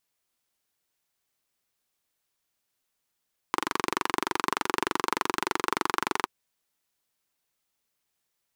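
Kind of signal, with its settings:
pulse-train model of a single-cylinder engine, steady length 2.73 s, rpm 2,800, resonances 370/1,000 Hz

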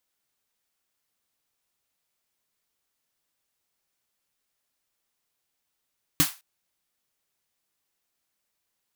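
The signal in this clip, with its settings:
synth snare length 0.21 s, tones 160 Hz, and 290 Hz, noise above 830 Hz, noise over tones 1.5 dB, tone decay 0.10 s, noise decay 0.28 s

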